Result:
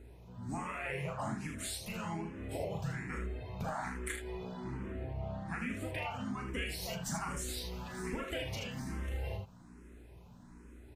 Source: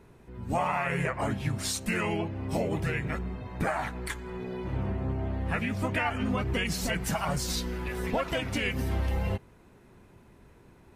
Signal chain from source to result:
parametric band 7,300 Hz +4.5 dB 1.1 octaves
downward compressor, threshold −31 dBFS, peak gain reduction 7.5 dB
mains hum 60 Hz, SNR 14 dB
on a send: ambience of single reflections 37 ms −6 dB, 78 ms −6.5 dB
on the sum: frequency shifter mixed with the dry sound +1.2 Hz
level −2.5 dB

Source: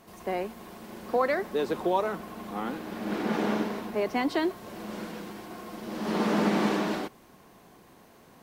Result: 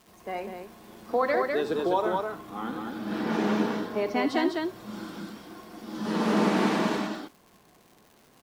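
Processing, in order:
loudspeakers that aren't time-aligned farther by 26 metres −11 dB, 69 metres −3 dB
noise reduction from a noise print of the clip's start 7 dB
surface crackle 290 per second −46 dBFS

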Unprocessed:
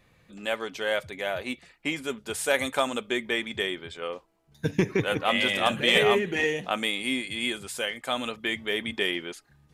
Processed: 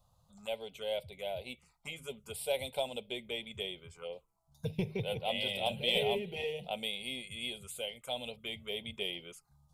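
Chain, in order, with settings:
phaser with its sweep stopped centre 720 Hz, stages 4
phaser swept by the level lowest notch 380 Hz, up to 1,200 Hz, full sweep at −33 dBFS
hum removal 156.2 Hz, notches 2
level −3 dB

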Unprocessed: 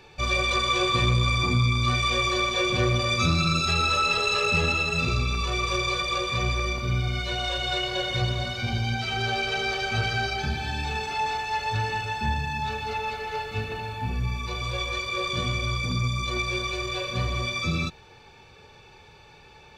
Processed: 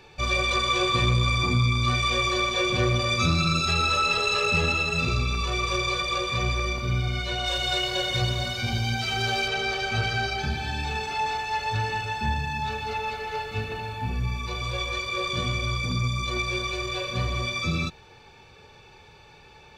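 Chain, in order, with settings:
0:07.46–0:09.48: high-shelf EQ 6,400 Hz +11 dB

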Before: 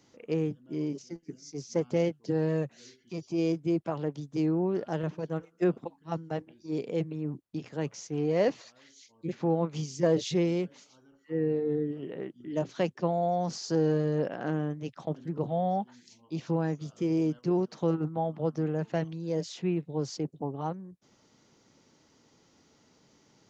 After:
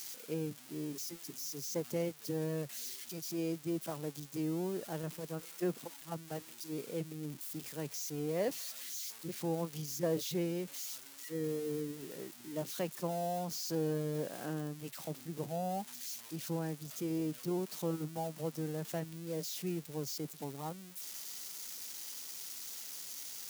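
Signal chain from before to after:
spike at every zero crossing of −27 dBFS
level −8.5 dB

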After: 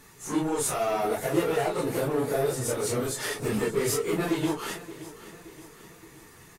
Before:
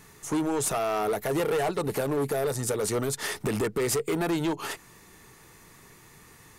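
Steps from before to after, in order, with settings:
random phases in long frames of 100 ms
on a send: repeating echo 573 ms, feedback 52%, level −16 dB

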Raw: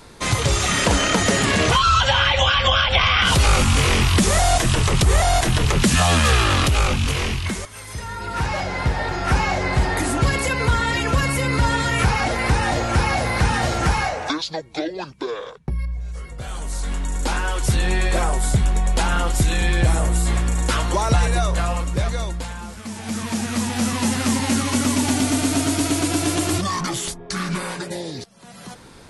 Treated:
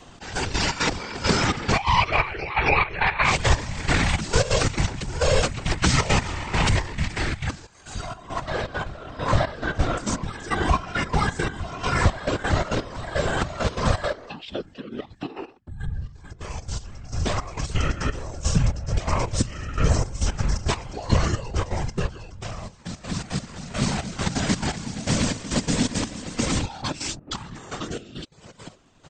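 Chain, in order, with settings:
gate pattern "xx..x.xx.x....x" 170 BPM −12 dB
random phases in short frames
pitch shifter −5 semitones
level −1.5 dB

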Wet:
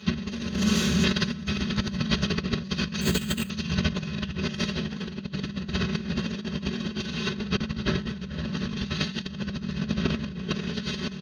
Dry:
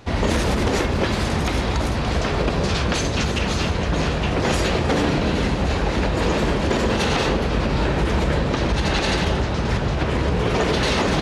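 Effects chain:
lower of the sound and its delayed copy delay 4.7 ms
Savitzky-Golay smoothing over 15 samples
parametric band 1,700 Hz +5 dB 1 octave
0:00.54–0:01.04: gain into a clipping stage and back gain 29 dB
parametric band 810 Hz −7.5 dB 1.6 octaves
repeating echo 74 ms, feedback 38%, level −7 dB
convolution reverb RT60 0.15 s, pre-delay 3 ms, DRR 0.5 dB
0:03.01–0:03.50: bad sample-rate conversion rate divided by 4×, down filtered, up hold
high-pass filter 100 Hz 12 dB per octave
compressor whose output falls as the input rises −21 dBFS, ratio −0.5
level −6 dB

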